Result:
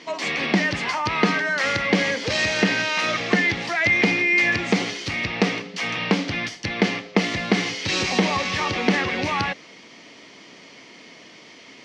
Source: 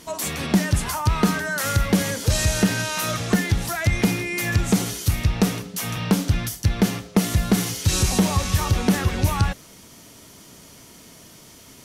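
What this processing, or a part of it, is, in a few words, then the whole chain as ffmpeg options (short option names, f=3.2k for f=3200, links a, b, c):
phone earpiece: -af "highpass=330,equalizer=f=400:t=q:w=4:g=-3,equalizer=f=630:t=q:w=4:g=-4,equalizer=f=940:t=q:w=4:g=-4,equalizer=f=1.4k:t=q:w=4:g=-7,equalizer=f=2.1k:t=q:w=4:g=6,equalizer=f=3.7k:t=q:w=4:g=-4,lowpass=f=4.5k:w=0.5412,lowpass=f=4.5k:w=1.3066,volume=6.5dB"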